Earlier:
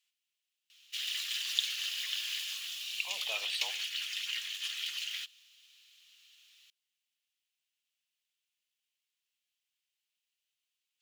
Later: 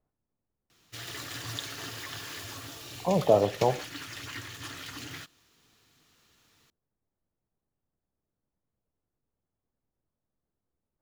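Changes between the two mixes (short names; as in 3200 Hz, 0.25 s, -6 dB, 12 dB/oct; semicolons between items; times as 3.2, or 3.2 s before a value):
speech: add LPF 1100 Hz; master: remove resonant high-pass 2900 Hz, resonance Q 3.3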